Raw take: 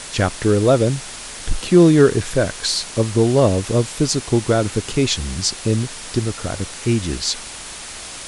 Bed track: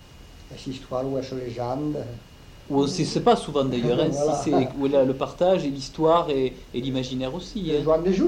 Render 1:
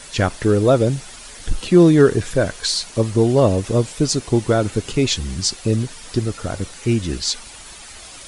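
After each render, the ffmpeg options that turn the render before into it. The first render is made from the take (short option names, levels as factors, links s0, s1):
-af "afftdn=nr=9:nf=-34"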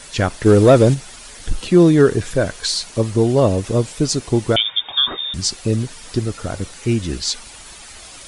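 -filter_complex "[0:a]asplit=3[s0][s1][s2];[s0]afade=t=out:st=0.45:d=0.02[s3];[s1]acontrast=56,afade=t=in:st=0.45:d=0.02,afade=t=out:st=0.93:d=0.02[s4];[s2]afade=t=in:st=0.93:d=0.02[s5];[s3][s4][s5]amix=inputs=3:normalize=0,asettb=1/sr,asplit=3[s6][s7][s8];[s6]atrim=end=4.564[s9];[s7]atrim=start=4.56:end=5.34,asetpts=PTS-STARTPTS,afade=t=in:d=0.004:c=qsin,afade=t=out:st=0.776:d=0.004:c=qsin,lowpass=f=3100:t=q:w=0.5098,lowpass=f=3100:t=q:w=0.6013,lowpass=f=3100:t=q:w=0.9,lowpass=f=3100:t=q:w=2.563,afreqshift=-3700[s10];[s8]atrim=start=5.336[s11];[s9][s10]acrossfade=d=0.004:c1=hsin:c2=qsin[s12];[s12][s11]acrossfade=d=0.004:c1=qsin:c2=hsin"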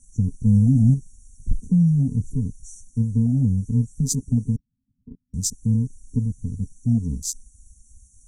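-af "afftfilt=real='re*(1-between(b*sr/4096,270,5600))':imag='im*(1-between(b*sr/4096,270,5600))':win_size=4096:overlap=0.75,afwtdn=0.0316"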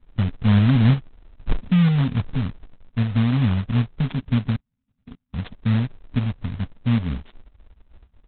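-af "adynamicsmooth=sensitivity=2:basefreq=810,aresample=8000,acrusher=bits=3:mode=log:mix=0:aa=0.000001,aresample=44100"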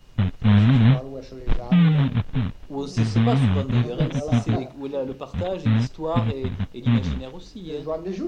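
-filter_complex "[1:a]volume=0.398[s0];[0:a][s0]amix=inputs=2:normalize=0"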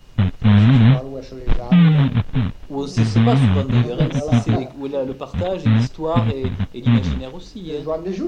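-af "volume=1.68,alimiter=limit=0.708:level=0:latency=1"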